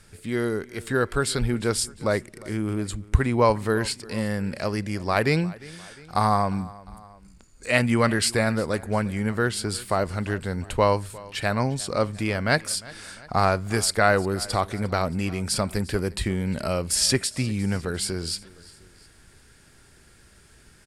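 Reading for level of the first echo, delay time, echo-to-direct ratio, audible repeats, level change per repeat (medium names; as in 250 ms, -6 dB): -21.0 dB, 353 ms, -20.0 dB, 2, -5.0 dB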